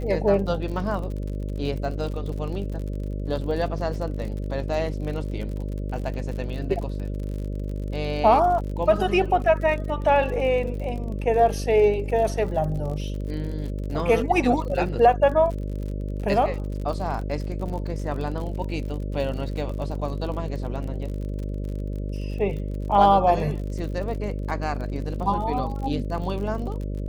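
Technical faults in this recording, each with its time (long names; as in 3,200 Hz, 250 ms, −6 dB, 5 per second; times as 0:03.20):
mains buzz 50 Hz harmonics 12 −29 dBFS
surface crackle 48 per second −33 dBFS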